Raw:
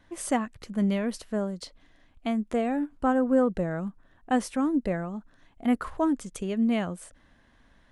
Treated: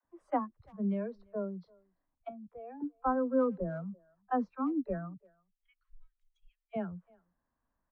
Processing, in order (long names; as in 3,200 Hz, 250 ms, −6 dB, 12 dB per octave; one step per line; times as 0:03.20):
0:05.13–0:06.73: inverse Chebyshev band-stop filter 110–700 Hz, stop band 70 dB
noise reduction from a noise print of the clip's start 17 dB
0:02.28–0:02.80: output level in coarse steps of 20 dB
low-pass with resonance 1,100 Hz, resonance Q 2
all-pass dispersion lows, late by 49 ms, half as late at 300 Hz
far-end echo of a speakerphone 340 ms, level −26 dB
level −7 dB